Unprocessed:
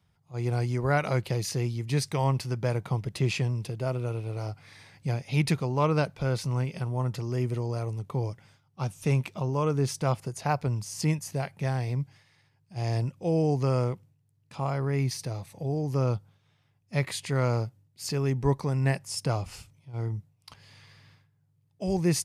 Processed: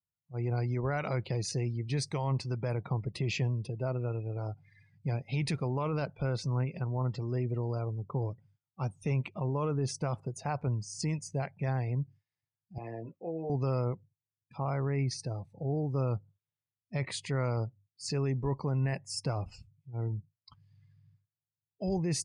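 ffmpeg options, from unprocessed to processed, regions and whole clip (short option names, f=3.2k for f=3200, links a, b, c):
-filter_complex "[0:a]asettb=1/sr,asplit=3[a][b][c];[a]atrim=end=12.784[d];[b]atrim=start=12.78:end=13.5,asetpts=PTS-STARTPTS,afade=t=in:d=0.004:c=qsin,afade=t=out:st=0.716:d=0.004:c=qsin,acrossover=split=210 3100:gain=0.0891 1 0.2[e][f][g];[e][f][g]amix=inputs=3:normalize=0,asplit=2[h][i];[i]adelay=18,volume=-4dB[j];[h][j]amix=inputs=2:normalize=0,atrim=end_sample=31752,acompressor=threshold=-36dB:ratio=2:attack=3.2:release=140:knee=1:detection=peak[k];[c]atrim=start=13.496[l];[d][k]acrossfade=d=0.004:c1=hsin:c2=qsin[m];[m][l]acrossfade=d=0.004:c1=qsin:c2=hsin,lowpass=f=9.7k:w=0.5412,lowpass=f=9.7k:w=1.3066,afftdn=nr=28:nf=-44,alimiter=limit=-21.5dB:level=0:latency=1:release=11,volume=-2.5dB"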